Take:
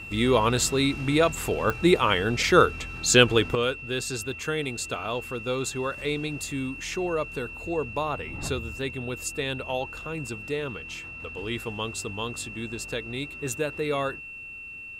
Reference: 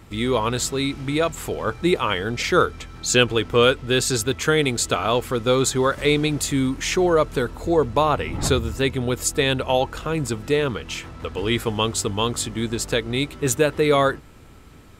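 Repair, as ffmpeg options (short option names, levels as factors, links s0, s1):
-af "adeclick=t=4,bandreject=f=2700:w=30,asetnsamples=n=441:p=0,asendcmd='3.55 volume volume 10dB',volume=1"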